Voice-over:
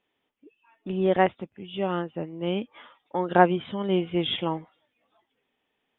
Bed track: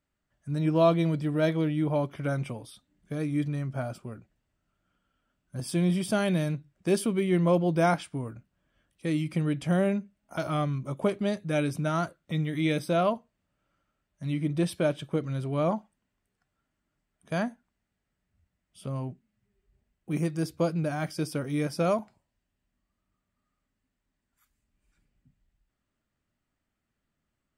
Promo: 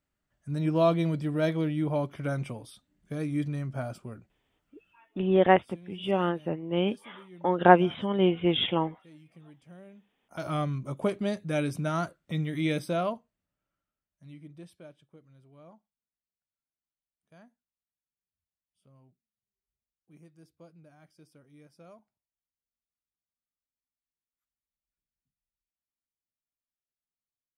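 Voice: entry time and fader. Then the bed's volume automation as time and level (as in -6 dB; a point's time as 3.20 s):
4.30 s, +1.0 dB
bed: 4.90 s -1.5 dB
5.17 s -25 dB
9.95 s -25 dB
10.48 s -1.5 dB
12.76 s -1.5 dB
15.18 s -26.5 dB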